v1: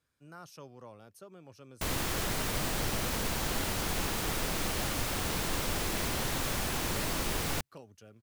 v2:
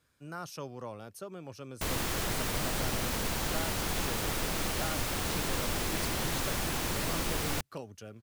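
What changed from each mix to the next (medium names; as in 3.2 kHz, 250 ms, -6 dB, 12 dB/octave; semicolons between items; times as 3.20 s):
speech +8.0 dB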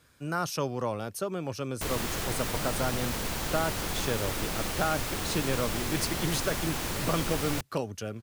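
speech +10.5 dB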